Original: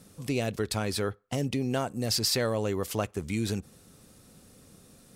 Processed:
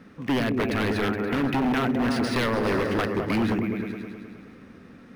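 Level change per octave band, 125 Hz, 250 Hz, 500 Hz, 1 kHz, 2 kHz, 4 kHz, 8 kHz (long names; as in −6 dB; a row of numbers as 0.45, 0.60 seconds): +2.0, +8.5, +4.0, +8.5, +10.0, −2.0, −11.0 decibels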